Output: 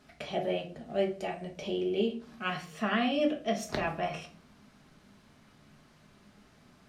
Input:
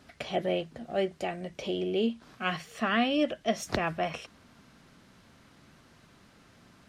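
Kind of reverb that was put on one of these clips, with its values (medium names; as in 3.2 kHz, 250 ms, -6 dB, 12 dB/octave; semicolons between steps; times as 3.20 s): simulated room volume 310 m³, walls furnished, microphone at 1.4 m; trim -4.5 dB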